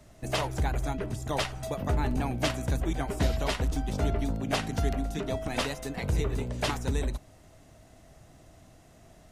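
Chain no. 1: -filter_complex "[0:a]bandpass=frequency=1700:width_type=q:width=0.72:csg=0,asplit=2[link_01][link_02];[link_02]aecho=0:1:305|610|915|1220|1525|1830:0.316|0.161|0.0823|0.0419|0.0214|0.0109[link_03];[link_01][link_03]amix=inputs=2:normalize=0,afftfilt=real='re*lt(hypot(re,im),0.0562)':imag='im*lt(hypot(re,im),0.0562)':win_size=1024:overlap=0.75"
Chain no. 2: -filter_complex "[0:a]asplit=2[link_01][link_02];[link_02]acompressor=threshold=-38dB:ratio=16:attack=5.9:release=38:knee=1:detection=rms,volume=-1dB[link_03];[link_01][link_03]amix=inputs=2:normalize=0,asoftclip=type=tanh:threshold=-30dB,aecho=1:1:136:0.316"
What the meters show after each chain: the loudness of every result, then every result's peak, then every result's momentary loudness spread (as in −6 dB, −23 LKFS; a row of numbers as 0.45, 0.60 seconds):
−41.0, −34.5 LKFS; −24.5, −27.5 dBFS; 10, 16 LU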